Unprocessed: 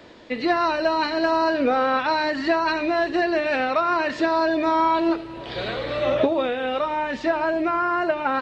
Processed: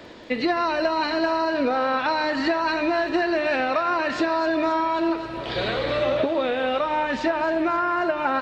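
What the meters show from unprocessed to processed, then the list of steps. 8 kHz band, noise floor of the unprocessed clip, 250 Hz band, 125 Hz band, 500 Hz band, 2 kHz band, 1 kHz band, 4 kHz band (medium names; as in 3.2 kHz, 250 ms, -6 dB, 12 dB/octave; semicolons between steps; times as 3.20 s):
no reading, -36 dBFS, -0.5 dB, +1.0 dB, -1.0 dB, -0.5 dB, -1.5 dB, +0.5 dB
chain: compression, threshold -23 dBFS, peak gain reduction 8.5 dB; crackle 20 per s -51 dBFS; thinning echo 265 ms, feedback 72%, high-pass 590 Hz, level -12 dB; trim +3.5 dB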